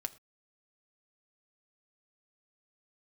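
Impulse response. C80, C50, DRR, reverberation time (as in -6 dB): 22.0 dB, 19.0 dB, 7.0 dB, no single decay rate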